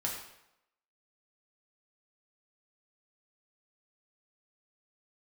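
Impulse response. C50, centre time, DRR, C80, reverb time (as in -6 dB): 4.0 dB, 40 ms, -3.5 dB, 6.5 dB, 0.85 s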